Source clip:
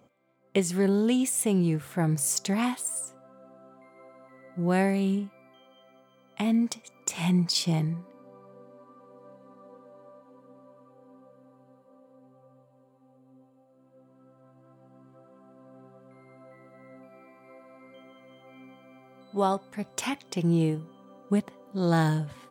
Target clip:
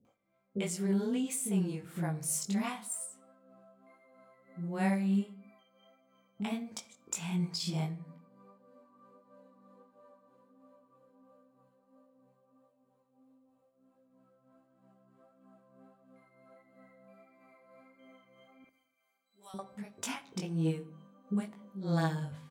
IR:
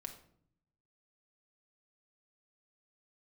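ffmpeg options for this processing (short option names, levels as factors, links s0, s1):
-filter_complex "[0:a]tremolo=f=3.1:d=0.53,flanger=delay=18.5:depth=2.6:speed=1.5,asettb=1/sr,asplit=3[s0][s1][s2];[s0]atrim=end=18.644[s3];[s1]atrim=start=18.64:end=19.54,asetpts=PTS-STARTPTS,afade=t=in:d=0.004:c=qsin,afade=t=out:st=0.896:d=0.004:c=qsin,aderivative[s4];[s2]atrim=start=19.536[s5];[s3][s4]acrossfade=d=0.004:c1=hsin:c2=qsin[s6];[s6][s5]acrossfade=d=0.004:c1=qsin:c2=hsin,acrossover=split=400[s7][s8];[s8]adelay=50[s9];[s7][s9]amix=inputs=2:normalize=0,asplit=2[s10][s11];[1:a]atrim=start_sample=2205,afade=t=out:st=0.36:d=0.01,atrim=end_sample=16317[s12];[s11][s12]afir=irnorm=-1:irlink=0,volume=0.944[s13];[s10][s13]amix=inputs=2:normalize=0,volume=0.501"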